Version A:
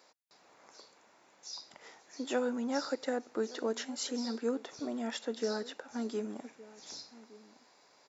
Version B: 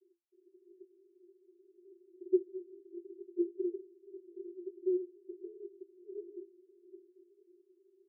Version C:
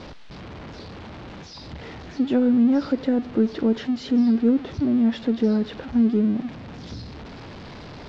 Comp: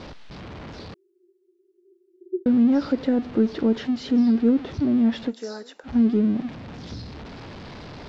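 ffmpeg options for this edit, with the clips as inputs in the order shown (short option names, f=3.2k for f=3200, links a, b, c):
-filter_complex "[2:a]asplit=3[a][b][c];[a]atrim=end=0.942[d];[1:a]atrim=start=0.938:end=2.462[e];[b]atrim=start=2.458:end=5.33[f];[0:a]atrim=start=5.27:end=5.89[g];[c]atrim=start=5.83[h];[d][e]acrossfade=d=0.004:c1=hsin:c2=hsin[i];[i][f]acrossfade=d=0.004:c1=hsin:c2=hsin[j];[j][g]acrossfade=d=0.06:c1=tri:c2=tri[k];[k][h]acrossfade=d=0.06:c1=tri:c2=tri"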